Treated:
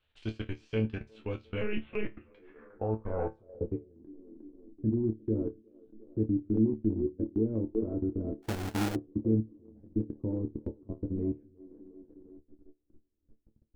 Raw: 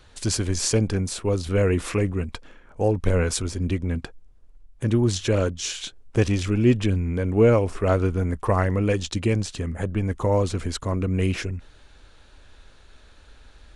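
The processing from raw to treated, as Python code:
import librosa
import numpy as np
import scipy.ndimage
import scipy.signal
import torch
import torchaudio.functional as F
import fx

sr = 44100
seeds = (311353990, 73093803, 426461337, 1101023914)

p1 = x + fx.echo_wet_bandpass(x, sr, ms=357, feedback_pct=46, hz=570.0, wet_db=-6, dry=0)
p2 = fx.level_steps(p1, sr, step_db=23)
p3 = fx.filter_sweep_lowpass(p2, sr, from_hz=2900.0, to_hz=310.0, start_s=2.23, end_s=4.04, q=3.5)
p4 = fx.lpc_monotone(p3, sr, seeds[0], pitch_hz=210.0, order=10, at=(1.61, 2.21))
p5 = fx.resonator_bank(p4, sr, root=38, chord='fifth', decay_s=0.22)
p6 = fx.sample_hold(p5, sr, seeds[1], rate_hz=1100.0, jitter_pct=20, at=(8.42, 8.94), fade=0.02)
y = fx.transient(p6, sr, attack_db=0, sustain_db=-5)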